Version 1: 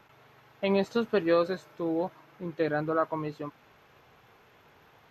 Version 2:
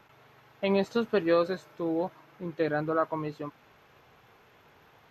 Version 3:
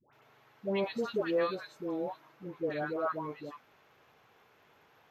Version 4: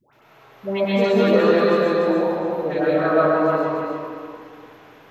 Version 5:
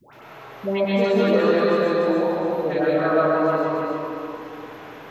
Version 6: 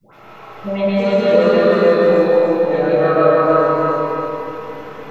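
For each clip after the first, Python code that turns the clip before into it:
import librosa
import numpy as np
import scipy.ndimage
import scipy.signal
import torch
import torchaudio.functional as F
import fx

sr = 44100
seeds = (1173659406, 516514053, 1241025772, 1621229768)

y1 = x
y2 = fx.low_shelf(y1, sr, hz=140.0, db=-9.0)
y2 = fx.dispersion(y2, sr, late='highs', ms=130.0, hz=860.0)
y2 = F.gain(torch.from_numpy(y2), -4.5).numpy()
y3 = fx.echo_feedback(y2, sr, ms=294, feedback_pct=29, wet_db=-4)
y3 = fx.rev_freeverb(y3, sr, rt60_s=2.3, hf_ratio=0.4, predelay_ms=85, drr_db=-6.5)
y3 = F.gain(torch.from_numpy(y3), 7.0).numpy()
y4 = fx.band_squash(y3, sr, depth_pct=40)
y4 = F.gain(torch.from_numpy(y4), -1.5).numpy()
y5 = y4 + 10.0 ** (-3.0 / 20.0) * np.pad(y4, (int(316 * sr / 1000.0), 0))[:len(y4)]
y5 = fx.room_shoebox(y5, sr, seeds[0], volume_m3=630.0, walls='furnished', distance_m=6.9)
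y5 = F.gain(torch.from_numpy(y5), -7.0).numpy()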